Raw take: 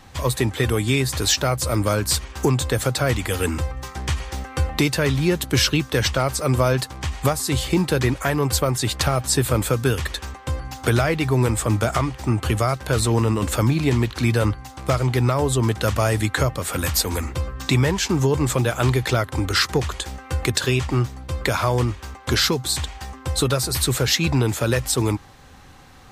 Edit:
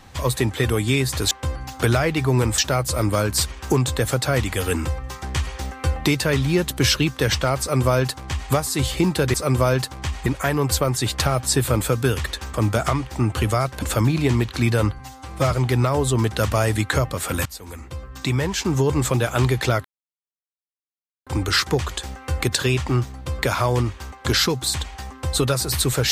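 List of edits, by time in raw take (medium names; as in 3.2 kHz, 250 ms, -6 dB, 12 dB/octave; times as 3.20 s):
6.33–7.25 s: copy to 8.07 s
10.35–11.62 s: move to 1.31 s
12.90–13.44 s: delete
14.61–14.96 s: stretch 1.5×
16.90–18.34 s: fade in, from -20.5 dB
19.29 s: insert silence 1.42 s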